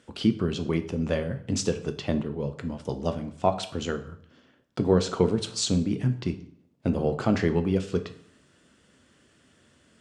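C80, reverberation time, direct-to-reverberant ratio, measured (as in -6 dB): 16.5 dB, 0.60 s, 7.5 dB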